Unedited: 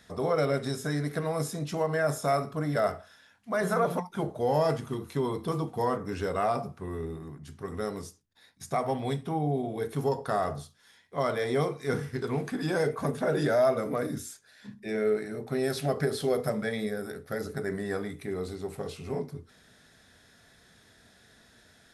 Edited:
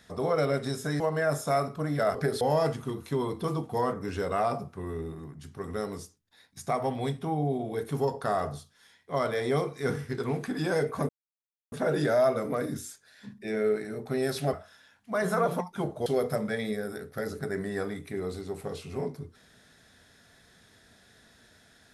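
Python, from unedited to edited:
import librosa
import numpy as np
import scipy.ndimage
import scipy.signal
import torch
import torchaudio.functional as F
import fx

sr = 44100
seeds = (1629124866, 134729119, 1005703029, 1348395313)

y = fx.edit(x, sr, fx.cut(start_s=1.0, length_s=0.77),
    fx.swap(start_s=2.92, length_s=1.53, other_s=15.94, other_length_s=0.26),
    fx.insert_silence(at_s=13.13, length_s=0.63), tone=tone)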